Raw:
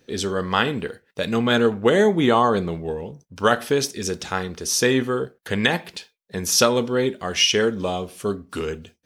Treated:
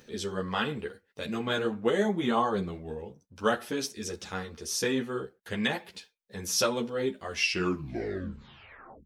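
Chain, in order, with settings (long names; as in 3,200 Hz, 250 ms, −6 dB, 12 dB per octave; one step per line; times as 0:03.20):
turntable brake at the end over 1.71 s
upward compression, threshold −37 dBFS
string-ensemble chorus
level −6.5 dB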